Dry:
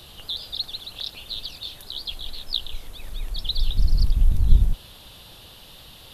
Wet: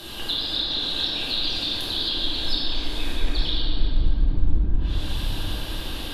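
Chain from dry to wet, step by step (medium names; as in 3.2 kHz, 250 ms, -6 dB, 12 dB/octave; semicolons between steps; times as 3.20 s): bass shelf 290 Hz -6 dB; small resonant body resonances 300/1600 Hz, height 12 dB, ringing for 45 ms; low-pass that closes with the level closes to 1.5 kHz, closed at -21 dBFS; compression 5:1, threshold -31 dBFS, peak gain reduction 17.5 dB; simulated room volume 210 m³, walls hard, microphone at 1.2 m; trim +4.5 dB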